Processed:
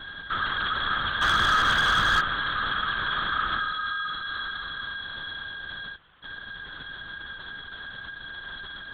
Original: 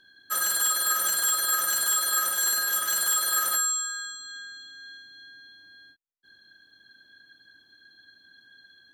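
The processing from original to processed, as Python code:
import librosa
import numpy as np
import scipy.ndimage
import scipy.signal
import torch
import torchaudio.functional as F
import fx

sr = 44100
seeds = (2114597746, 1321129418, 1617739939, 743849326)

y = fx.bin_compress(x, sr, power=0.4)
y = fx.lpc_vocoder(y, sr, seeds[0], excitation='whisper', order=8)
y = fx.leveller(y, sr, passes=2, at=(1.21, 2.21))
y = y * 10.0 ** (1.0 / 20.0)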